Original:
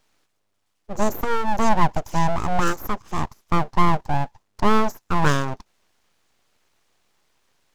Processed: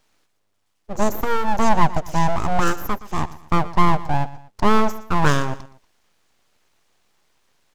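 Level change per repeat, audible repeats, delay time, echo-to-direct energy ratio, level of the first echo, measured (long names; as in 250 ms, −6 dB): −8.0 dB, 2, 119 ms, −16.5 dB, −17.0 dB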